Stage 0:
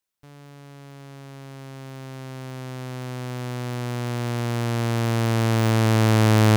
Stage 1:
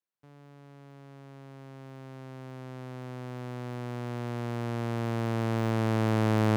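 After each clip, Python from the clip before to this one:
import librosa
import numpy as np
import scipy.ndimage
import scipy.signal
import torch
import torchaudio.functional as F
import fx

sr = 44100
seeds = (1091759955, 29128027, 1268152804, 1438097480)

y = scipy.signal.sosfilt(scipy.signal.butter(2, 120.0, 'highpass', fs=sr, output='sos'), x)
y = fx.high_shelf(y, sr, hz=2700.0, db=-11.0)
y = F.gain(torch.from_numpy(y), -6.0).numpy()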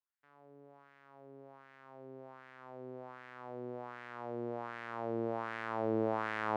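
y = fx.wah_lfo(x, sr, hz=1.3, low_hz=400.0, high_hz=1800.0, q=2.2)
y = F.gain(torch.from_numpy(y), 2.0).numpy()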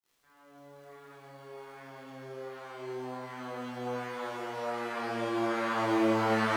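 y = fx.dmg_crackle(x, sr, seeds[0], per_s=65.0, level_db=-53.0)
y = fx.rev_shimmer(y, sr, seeds[1], rt60_s=3.6, semitones=12, shimmer_db=-8, drr_db=-10.5)
y = F.gain(torch.from_numpy(y), -3.5).numpy()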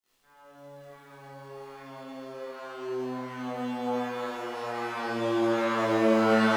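y = fx.room_shoebox(x, sr, seeds[2], volume_m3=120.0, walls='furnished', distance_m=1.5)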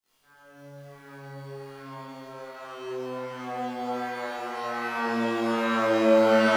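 y = fx.room_flutter(x, sr, wall_m=3.7, rt60_s=0.4)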